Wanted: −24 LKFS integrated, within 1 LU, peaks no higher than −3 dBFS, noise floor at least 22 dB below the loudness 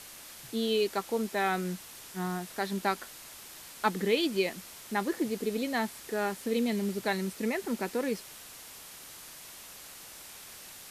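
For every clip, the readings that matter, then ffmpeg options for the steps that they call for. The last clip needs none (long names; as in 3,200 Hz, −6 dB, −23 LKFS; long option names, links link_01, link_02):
background noise floor −48 dBFS; target noise floor −54 dBFS; integrated loudness −32.0 LKFS; sample peak −14.0 dBFS; target loudness −24.0 LKFS
→ -af "afftdn=noise_reduction=6:noise_floor=-48"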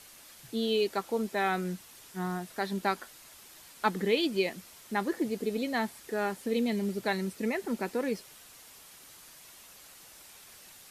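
background noise floor −53 dBFS; target noise floor −54 dBFS
→ -af "afftdn=noise_reduction=6:noise_floor=-53"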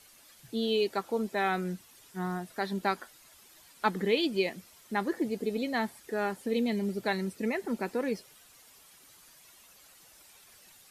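background noise floor −58 dBFS; integrated loudness −32.0 LKFS; sample peak −14.5 dBFS; target loudness −24.0 LKFS
→ -af "volume=8dB"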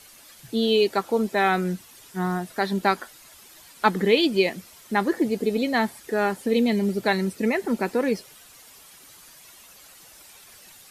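integrated loudness −24.0 LKFS; sample peak −6.5 dBFS; background noise floor −50 dBFS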